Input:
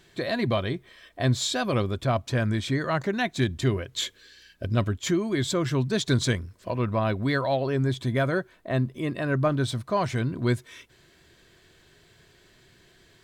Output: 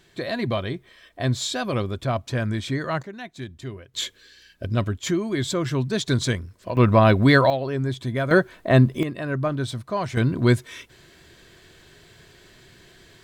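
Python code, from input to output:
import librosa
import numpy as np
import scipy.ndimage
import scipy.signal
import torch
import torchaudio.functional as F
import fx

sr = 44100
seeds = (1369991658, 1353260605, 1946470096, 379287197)

y = fx.gain(x, sr, db=fx.steps((0.0, 0.0), (3.03, -10.5), (3.94, 1.0), (6.77, 10.0), (7.5, -0.5), (8.31, 10.0), (9.03, -1.0), (10.17, 6.5)))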